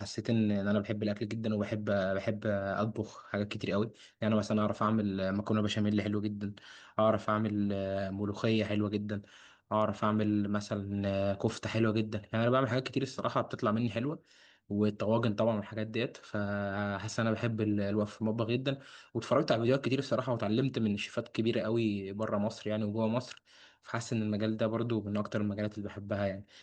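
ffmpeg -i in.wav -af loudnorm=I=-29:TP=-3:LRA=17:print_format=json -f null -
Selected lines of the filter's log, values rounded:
"input_i" : "-32.8",
"input_tp" : "-14.6",
"input_lra" : "3.0",
"input_thresh" : "-43.0",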